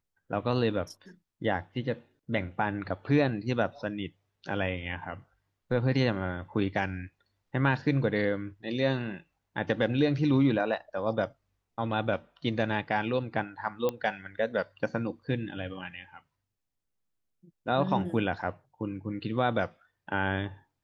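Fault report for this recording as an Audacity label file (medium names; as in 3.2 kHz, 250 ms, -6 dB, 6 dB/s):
13.890000	13.890000	pop -17 dBFS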